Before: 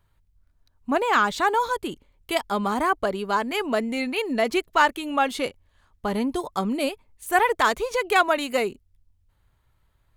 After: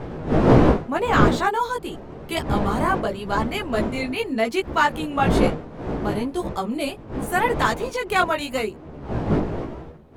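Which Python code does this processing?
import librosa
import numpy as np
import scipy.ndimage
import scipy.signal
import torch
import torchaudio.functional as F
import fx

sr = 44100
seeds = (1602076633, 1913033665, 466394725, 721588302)

y = fx.dmg_wind(x, sr, seeds[0], corner_hz=420.0, level_db=-24.0)
y = fx.chorus_voices(y, sr, voices=2, hz=0.85, base_ms=16, depth_ms=3.5, mix_pct=45)
y = y * 10.0 ** (2.5 / 20.0)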